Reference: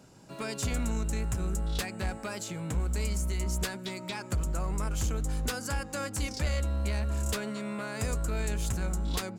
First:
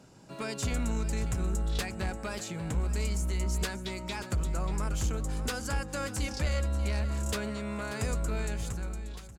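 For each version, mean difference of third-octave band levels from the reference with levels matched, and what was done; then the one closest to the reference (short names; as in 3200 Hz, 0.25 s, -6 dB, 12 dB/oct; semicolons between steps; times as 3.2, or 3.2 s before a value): 2.0 dB: ending faded out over 1.13 s; high shelf 12000 Hz -7.5 dB; short-mantissa float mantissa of 8-bit; on a send: echo 0.586 s -13 dB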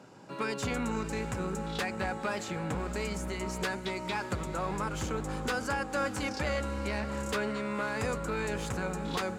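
4.0 dB: HPF 96 Hz 12 dB/oct; notch 660 Hz, Q 12; overdrive pedal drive 11 dB, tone 1200 Hz, clips at -18 dBFS; diffused feedback echo 0.573 s, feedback 47%, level -12.5 dB; gain +3.5 dB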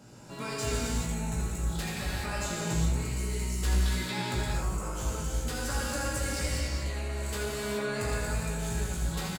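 6.0 dB: compressor 3:1, threshold -35 dBFS, peak gain reduction 7.5 dB; soft clip -31 dBFS, distortion -20 dB; on a send: early reflections 17 ms -4 dB, 80 ms -7.5 dB; on the sum: non-linear reverb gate 0.45 s flat, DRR -5 dB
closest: first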